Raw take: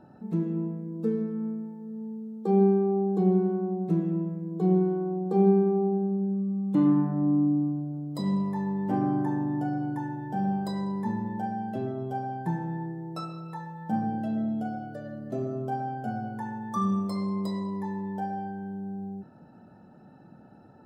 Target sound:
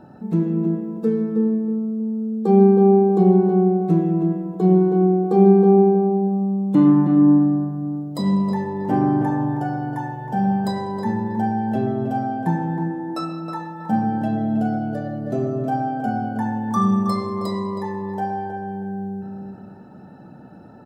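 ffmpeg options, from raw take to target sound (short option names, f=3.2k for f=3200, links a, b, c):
-filter_complex "[0:a]asplit=2[a][b];[b]adelay=318,lowpass=f=2k:p=1,volume=-5dB,asplit=2[c][d];[d]adelay=318,lowpass=f=2k:p=1,volume=0.34,asplit=2[e][f];[f]adelay=318,lowpass=f=2k:p=1,volume=0.34,asplit=2[g][h];[h]adelay=318,lowpass=f=2k:p=1,volume=0.34[i];[a][c][e][g][i]amix=inputs=5:normalize=0,volume=8dB"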